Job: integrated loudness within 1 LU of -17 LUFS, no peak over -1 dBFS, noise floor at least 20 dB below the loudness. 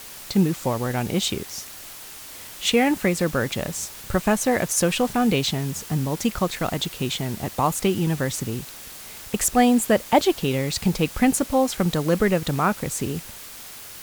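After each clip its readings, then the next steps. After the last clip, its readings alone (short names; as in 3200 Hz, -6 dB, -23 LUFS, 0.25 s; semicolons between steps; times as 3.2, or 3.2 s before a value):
noise floor -40 dBFS; noise floor target -43 dBFS; loudness -23.0 LUFS; peak -4.0 dBFS; loudness target -17.0 LUFS
-> denoiser 6 dB, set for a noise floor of -40 dBFS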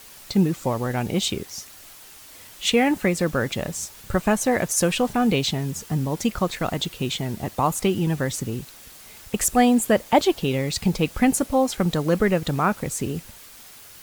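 noise floor -45 dBFS; loudness -23.0 LUFS; peak -4.0 dBFS; loudness target -17.0 LUFS
-> gain +6 dB; limiter -1 dBFS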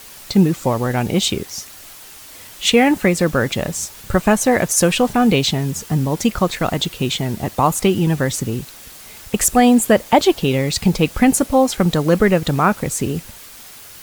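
loudness -17.0 LUFS; peak -1.0 dBFS; noise floor -39 dBFS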